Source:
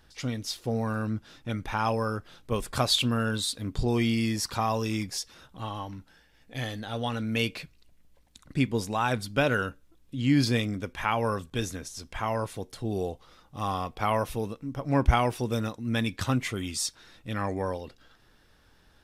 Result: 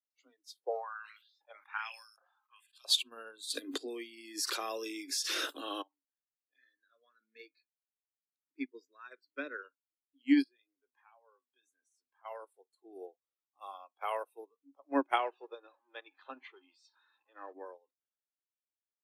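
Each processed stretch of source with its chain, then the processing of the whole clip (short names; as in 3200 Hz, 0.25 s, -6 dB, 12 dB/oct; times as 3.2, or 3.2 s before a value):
0.64–2.85 tone controls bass -5 dB, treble -6 dB + LFO high-pass saw up 1.3 Hz 460–6300 Hz + sustainer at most 33 dB/s
3.5–5.82 HPF 160 Hz + bell 880 Hz -14 dB 0.67 oct + fast leveller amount 100%
6.56–9.64 high shelf 8500 Hz -2.5 dB + fixed phaser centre 3000 Hz, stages 6
10.42–12.25 high shelf 10000 Hz -5.5 dB + compressor 2:1, threshold -41 dBFS + doubler 16 ms -13 dB
15.18–17.53 zero-crossing step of -32.5 dBFS + HPF 320 Hz + air absorption 180 m
whole clip: spectral noise reduction 19 dB; steep high-pass 260 Hz 96 dB/oct; upward expander 2.5:1, over -39 dBFS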